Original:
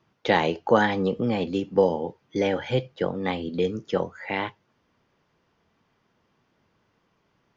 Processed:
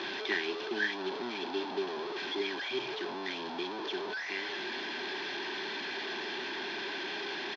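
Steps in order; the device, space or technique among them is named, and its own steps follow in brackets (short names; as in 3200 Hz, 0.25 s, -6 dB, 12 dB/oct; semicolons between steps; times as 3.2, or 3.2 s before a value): FFT band-reject 440–1500 Hz; digital answering machine (BPF 370–3300 Hz; delta modulation 32 kbps, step -28 dBFS; speaker cabinet 370–3900 Hz, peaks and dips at 380 Hz +8 dB, 890 Hz +3 dB, 1800 Hz -5 dB, 2600 Hz -6 dB); high shelf 3600 Hz +8 dB; comb 1.2 ms, depth 43%; gain -2.5 dB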